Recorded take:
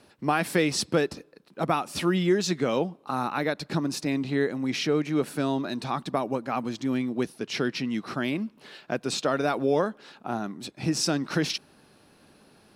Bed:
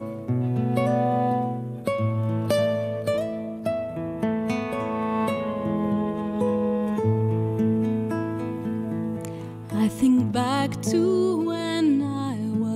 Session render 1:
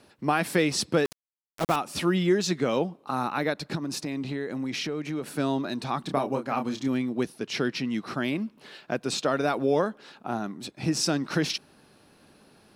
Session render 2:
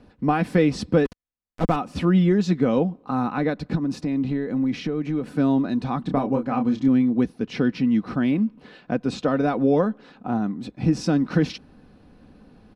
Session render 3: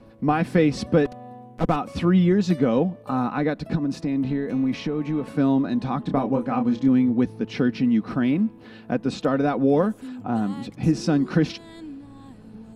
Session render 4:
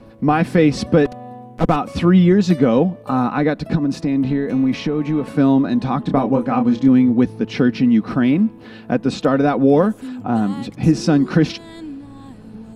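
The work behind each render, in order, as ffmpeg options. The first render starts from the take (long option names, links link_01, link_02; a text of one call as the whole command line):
ffmpeg -i in.wav -filter_complex "[0:a]asettb=1/sr,asplit=3[link_01][link_02][link_03];[link_01]atrim=end=1.054[link_04];[link_02]atrim=start=1.05:end=1.76,asetpts=PTS-STARTPTS,afade=type=in:duration=0.004:curve=qsin,afade=type=out:start_time=0.706:duration=0.004:curve=qsin,aeval=exprs='val(0)*gte(abs(val(0)),0.0398)':channel_layout=same[link_05];[link_03]atrim=start=1.756[link_06];[link_04][link_05]acrossfade=duration=0.004:curve1=hsin:curve2=qsin[link_07];[link_07][link_06]acrossfade=duration=0.004:curve1=qsin:curve2=hsin,asettb=1/sr,asplit=3[link_08][link_09][link_10];[link_08]atrim=end=3.754[link_11];[link_09]atrim=start=3.75:end=5.27,asetpts=PTS-STARTPTS,afade=type=in:duration=0.004:curve=qsin,afade=type=out:start_time=1.516:duration=0.004:curve=qsin,acompressor=threshold=-27dB:ratio=6:attack=3.2:release=140:knee=1:detection=peak[link_12];[link_10]atrim=start=5.266[link_13];[link_11][link_12]acrossfade=duration=0.004:curve1=hsin:curve2=qsin[link_14];[link_14][link_13]acrossfade=duration=0.004:curve1=qsin:curve2=hsin,asettb=1/sr,asplit=3[link_15][link_16][link_17];[link_15]atrim=end=6.014[link_18];[link_16]atrim=start=6.01:end=6.88,asetpts=PTS-STARTPTS,afade=type=in:duration=0.004:curve=qsin,afade=type=out:start_time=0.866:duration=0.004:curve=qsin,asplit=2[link_19][link_20];[link_20]adelay=29,volume=-6dB[link_21];[link_19][link_21]amix=inputs=2:normalize=0,atrim=end_sample=38367[link_22];[link_17]atrim=start=6.876[link_23];[link_18][link_22]acrossfade=duration=0.004:curve1=hsin:curve2=qsin[link_24];[link_24][link_23]acrossfade=duration=0.004:curve1=qsin:curve2=hsin" out.wav
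ffmpeg -i in.wav -af "aemphasis=mode=reproduction:type=riaa,aecho=1:1:4:0.41" out.wav
ffmpeg -i in.wav -i bed.wav -filter_complex "[1:a]volume=-18dB[link_01];[0:a][link_01]amix=inputs=2:normalize=0" out.wav
ffmpeg -i in.wav -af "volume=6dB,alimiter=limit=-3dB:level=0:latency=1" out.wav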